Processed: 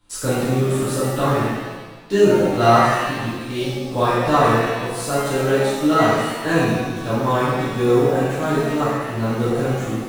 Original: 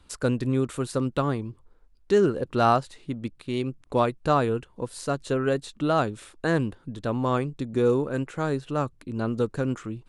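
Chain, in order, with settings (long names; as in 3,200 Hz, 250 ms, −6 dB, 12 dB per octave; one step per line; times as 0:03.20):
high-shelf EQ 9,100 Hz +8.5 dB
in parallel at −3 dB: bit reduction 7 bits
on the sum: reverb with rising layers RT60 1.2 s, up +7 semitones, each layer −8 dB, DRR −11.5 dB
level −9 dB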